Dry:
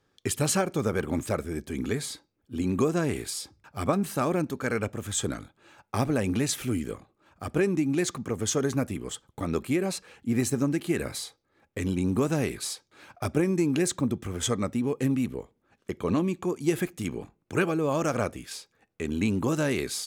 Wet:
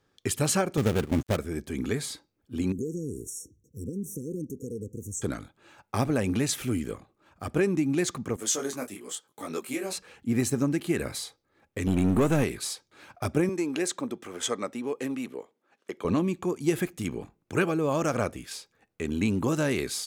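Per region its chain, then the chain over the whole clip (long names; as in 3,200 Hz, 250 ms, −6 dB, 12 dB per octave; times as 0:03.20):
0:00.77–0:01.37: gap after every zero crossing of 0.25 ms + noise gate −33 dBFS, range −10 dB + low-shelf EQ 240 Hz +6.5 dB
0:02.72–0:05.22: downward compressor 2 to 1, threshold −34 dBFS + linear-phase brick-wall band-stop 520–5,500 Hz
0:08.36–0:09.93: high-pass filter 300 Hz + high-shelf EQ 4,300 Hz +9 dB + micro pitch shift up and down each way 30 cents
0:11.87–0:12.44: gain on one half-wave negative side −7 dB + leveller curve on the samples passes 2 + parametric band 5,000 Hz −9 dB 0.56 octaves
0:13.49–0:16.05: high-pass filter 350 Hz + high-shelf EQ 11,000 Hz −7 dB
whole clip: no processing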